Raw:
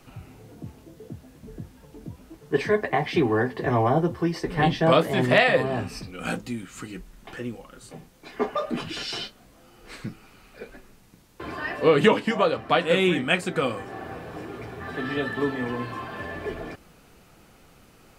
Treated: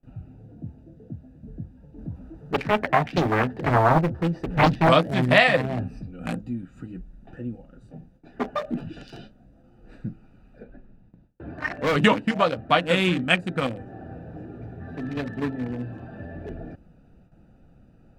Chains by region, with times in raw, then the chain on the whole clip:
1.98–4.89 G.711 law mismatch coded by mu + bell 1100 Hz +5 dB 0.91 oct + Doppler distortion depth 0.88 ms
10.63–11.96 LPF 3600 Hz + dynamic EQ 1500 Hz, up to +5 dB, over -38 dBFS, Q 1.2 + overloaded stage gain 17.5 dB
whole clip: Wiener smoothing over 41 samples; bell 410 Hz -9 dB 0.64 oct; gate with hold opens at -50 dBFS; gain +3.5 dB

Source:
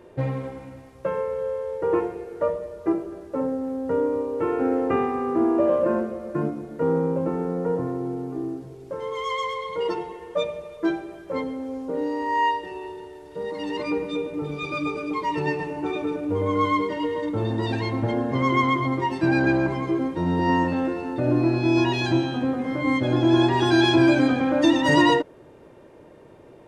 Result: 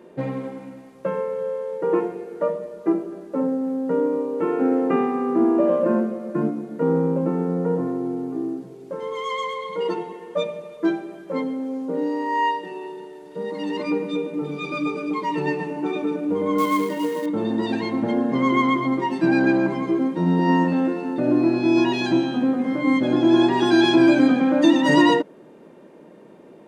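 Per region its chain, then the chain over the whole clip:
16.58–17.26 bell 87 Hz -12 dB 0.23 oct + short-mantissa float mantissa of 2-bit
whole clip: resonant low shelf 130 Hz -13.5 dB, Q 3; notch 5400 Hz, Q 28

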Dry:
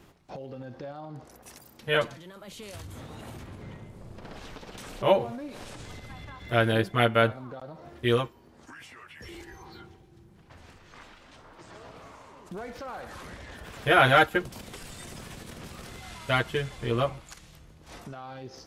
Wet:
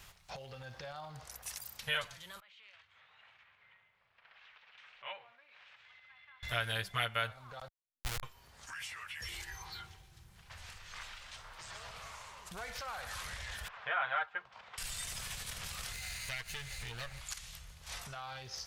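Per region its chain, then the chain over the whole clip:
2.4–6.43 LPF 2400 Hz 24 dB/oct + differentiator
7.68–8.23 HPF 73 Hz 24 dB/oct + Schmitt trigger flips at -22 dBFS
13.68–14.78 band-pass 1000 Hz, Q 1.3 + air absorption 160 m
15.93–17.21 minimum comb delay 0.45 ms + compressor 3:1, threshold -39 dBFS
whole clip: passive tone stack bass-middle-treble 10-0-10; compressor 2:1, threshold -48 dBFS; gain +8.5 dB

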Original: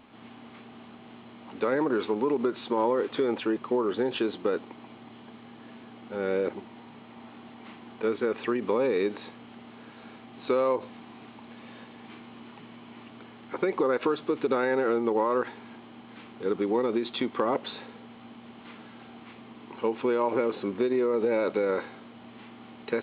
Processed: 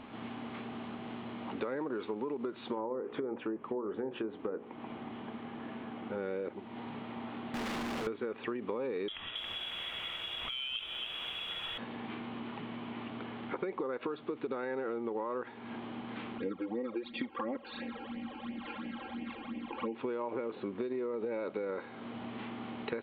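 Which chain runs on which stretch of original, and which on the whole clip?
2.75–6.18 treble ducked by the level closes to 1100 Hz, closed at -22 dBFS + air absorption 180 m + notches 60/120/180/240/300/360/420/480/540/600 Hz
7.54–8.07 infinite clipping + notches 60/120/180 Hz + Doppler distortion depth 0.3 ms
9.08–11.78 inverted band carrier 3600 Hz + negative-ratio compressor -29 dBFS, ratio -0.5 + lo-fi delay 0.275 s, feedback 35%, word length 9-bit, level -7 dB
16.38–19.95 comb 3.7 ms, depth 94% + phaser stages 12, 2.9 Hz, lowest notch 190–1300 Hz
whole clip: LPF 3400 Hz 6 dB/oct; compressor 4:1, threshold -43 dBFS; gain +6 dB

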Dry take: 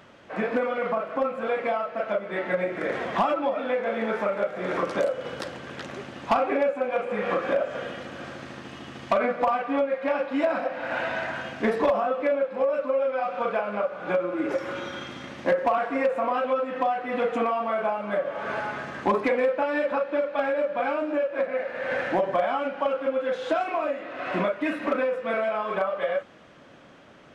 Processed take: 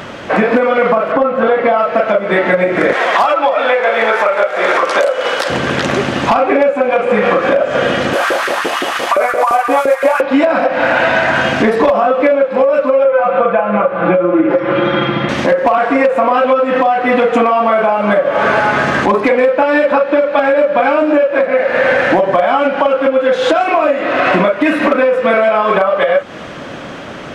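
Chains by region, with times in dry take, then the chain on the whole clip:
1.12–1.78 air absorption 150 m + notch 2400 Hz, Q 9.2
2.93–5.5 HPF 620 Hz + hard clip -18 dBFS
8.13–10.21 CVSD 64 kbps + LFO high-pass saw up 5.8 Hz 370–1600 Hz
13.04–15.29 air absorption 410 m + comb 5.9 ms, depth 84%
whole clip: compressor, threshold -32 dBFS; maximiser +24.5 dB; gain -1 dB

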